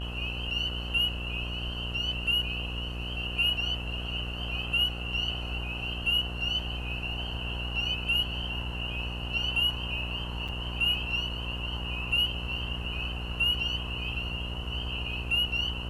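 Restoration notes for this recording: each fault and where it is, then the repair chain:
mains buzz 60 Hz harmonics 25 −36 dBFS
0:10.48–0:10.49: drop-out 6.2 ms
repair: hum removal 60 Hz, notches 25
repair the gap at 0:10.48, 6.2 ms

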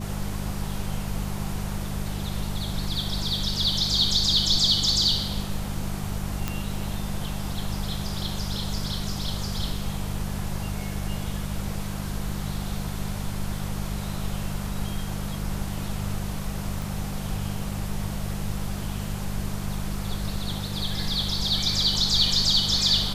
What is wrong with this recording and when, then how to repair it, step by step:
mains hum 50 Hz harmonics 4 −32 dBFS
0:06.48: click −12 dBFS
0:16.82: click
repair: click removal
hum removal 50 Hz, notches 4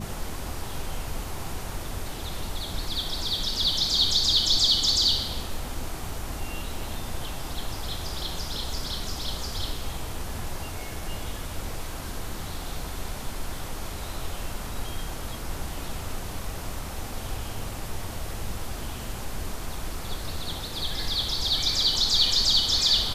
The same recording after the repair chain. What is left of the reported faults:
none of them is left

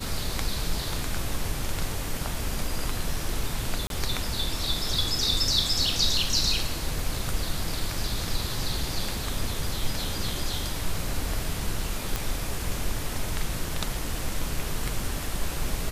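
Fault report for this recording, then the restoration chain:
0:03.87–0:03.90: drop-out 32 ms
0:12.16: click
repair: click removal
repair the gap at 0:03.87, 32 ms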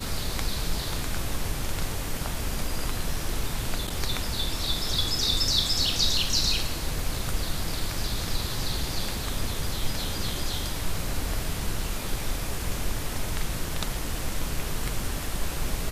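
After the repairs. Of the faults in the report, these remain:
none of them is left

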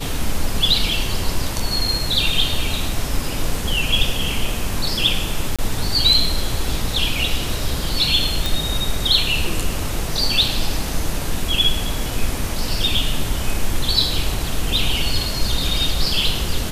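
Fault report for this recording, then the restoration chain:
0:05.56–0:05.59: drop-out 26 ms
0:08.46: click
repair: click removal
repair the gap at 0:05.56, 26 ms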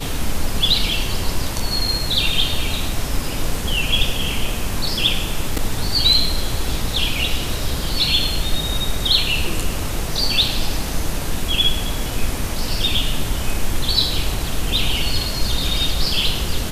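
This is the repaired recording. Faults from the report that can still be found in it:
none of them is left

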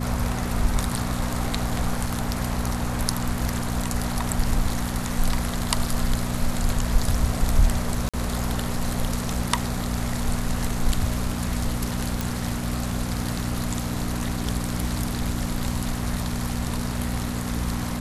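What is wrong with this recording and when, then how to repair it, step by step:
mains hum 60 Hz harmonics 4 −29 dBFS
0:08.09–0:08.14: drop-out 46 ms
0:12.21: click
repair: click removal
hum removal 60 Hz, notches 4
repair the gap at 0:08.09, 46 ms

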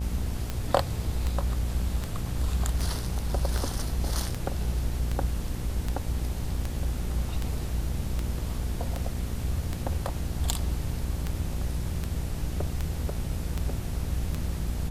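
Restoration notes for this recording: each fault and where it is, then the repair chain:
mains buzz 60 Hz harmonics 15 −33 dBFS
scratch tick 78 rpm −16 dBFS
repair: click removal
hum removal 60 Hz, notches 15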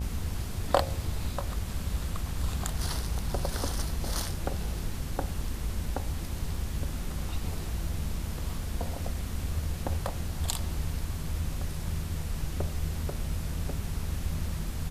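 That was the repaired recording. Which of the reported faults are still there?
none of them is left

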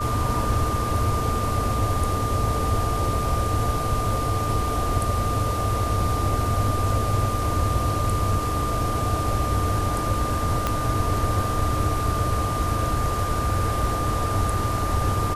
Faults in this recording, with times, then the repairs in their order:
whistle 1,200 Hz −27 dBFS
0:10.67: click −8 dBFS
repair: click removal
notch filter 1,200 Hz, Q 30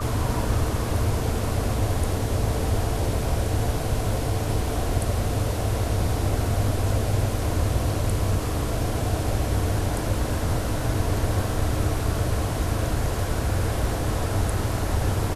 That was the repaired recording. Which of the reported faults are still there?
0:10.67: click

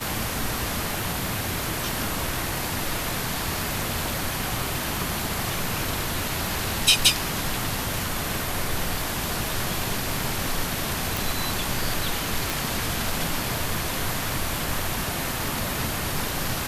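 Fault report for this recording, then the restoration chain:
surface crackle 31 per second −32 dBFS
0:11.17: click
0:12.50: click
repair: click removal

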